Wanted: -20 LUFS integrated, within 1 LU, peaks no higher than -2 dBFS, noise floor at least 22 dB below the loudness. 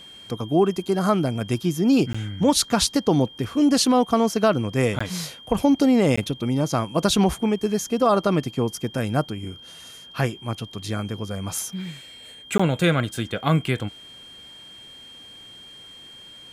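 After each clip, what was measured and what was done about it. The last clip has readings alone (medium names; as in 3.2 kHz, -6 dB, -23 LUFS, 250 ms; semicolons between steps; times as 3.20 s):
dropouts 4; longest dropout 15 ms; steady tone 3.2 kHz; tone level -42 dBFS; loudness -22.5 LUFS; peak level -6.5 dBFS; loudness target -20.0 LUFS
-> interpolate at 2.13/4.99/6.16/12.58 s, 15 ms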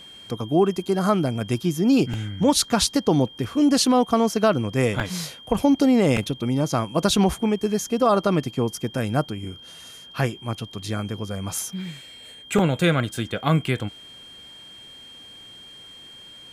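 dropouts 0; steady tone 3.2 kHz; tone level -42 dBFS
-> band-stop 3.2 kHz, Q 30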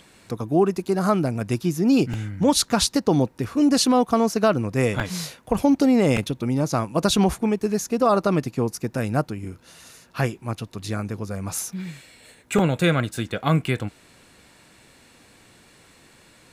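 steady tone not found; loudness -22.5 LUFS; peak level -7.0 dBFS; loudness target -20.0 LUFS
-> trim +2.5 dB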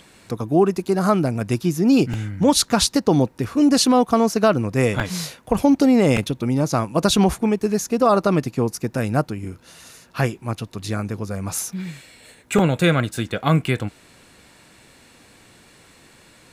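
loudness -20.0 LUFS; peak level -4.5 dBFS; noise floor -51 dBFS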